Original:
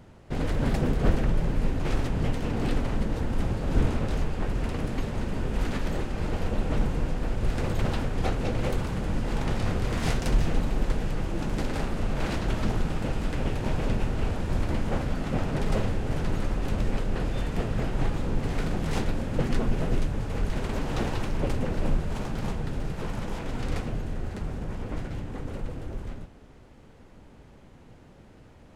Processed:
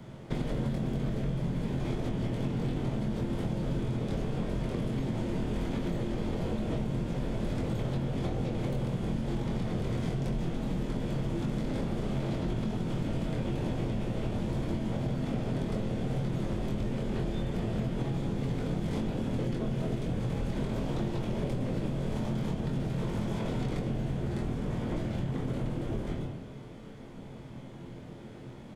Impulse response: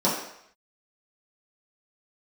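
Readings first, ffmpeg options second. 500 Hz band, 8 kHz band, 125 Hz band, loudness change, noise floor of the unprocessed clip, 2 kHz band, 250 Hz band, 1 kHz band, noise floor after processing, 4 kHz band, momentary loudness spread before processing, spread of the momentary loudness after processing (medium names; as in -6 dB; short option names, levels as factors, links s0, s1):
-3.0 dB, -7.5 dB, -2.0 dB, -3.0 dB, -51 dBFS, -8.0 dB, -0.5 dB, -6.5 dB, -45 dBFS, -5.0 dB, 7 LU, 2 LU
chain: -filter_complex "[0:a]equalizer=f=2900:t=o:w=0.29:g=5.5,asplit=2[s0][s1];[1:a]atrim=start_sample=2205,asetrate=26460,aresample=44100[s2];[s1][s2]afir=irnorm=-1:irlink=0,volume=0.106[s3];[s0][s3]amix=inputs=2:normalize=0,acrossover=split=150|830|2700[s4][s5][s6][s7];[s4]acompressor=threshold=0.0562:ratio=4[s8];[s5]acompressor=threshold=0.0447:ratio=4[s9];[s6]acompressor=threshold=0.00501:ratio=4[s10];[s7]acompressor=threshold=0.00398:ratio=4[s11];[s8][s9][s10][s11]amix=inputs=4:normalize=0,asplit=2[s12][s13];[s13]adelay=23,volume=0.631[s14];[s12][s14]amix=inputs=2:normalize=0,acompressor=threshold=0.0398:ratio=6"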